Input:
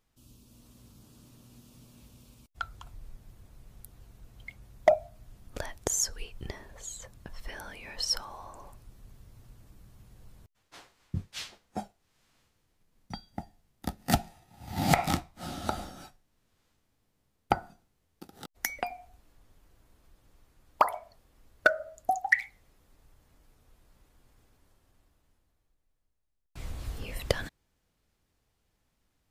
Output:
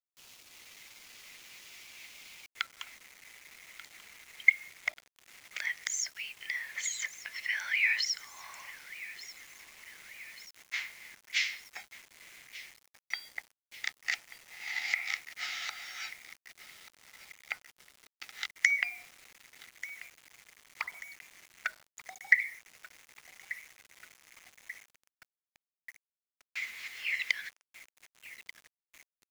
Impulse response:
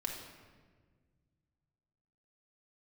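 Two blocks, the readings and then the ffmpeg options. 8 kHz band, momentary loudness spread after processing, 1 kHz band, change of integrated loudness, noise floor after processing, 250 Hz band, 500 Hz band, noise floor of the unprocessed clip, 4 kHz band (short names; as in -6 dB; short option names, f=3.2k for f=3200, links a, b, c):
-2.5 dB, 24 LU, -17.0 dB, -1.0 dB, under -85 dBFS, under -30 dB, under -25 dB, -76 dBFS, +1.0 dB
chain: -filter_complex "[0:a]aresample=16000,aresample=44100,adynamicequalizer=threshold=0.002:dfrequency=5400:dqfactor=4.4:tfrequency=5400:tqfactor=4.4:attack=5:release=100:ratio=0.375:range=2.5:mode=boostabove:tftype=bell,asplit=2[a][b];[1:a]atrim=start_sample=2205,afade=t=out:st=0.25:d=0.01,atrim=end_sample=11466[c];[b][c]afir=irnorm=-1:irlink=0,volume=-21dB[d];[a][d]amix=inputs=2:normalize=0,acompressor=threshold=-40dB:ratio=12,highpass=f=2.1k:t=q:w=8.6,acontrast=72,aecho=1:1:1187|2374|3561|4748|5935:0.141|0.0805|0.0459|0.0262|0.0149,acrusher=bits=8:mix=0:aa=0.000001,volume=1.5dB"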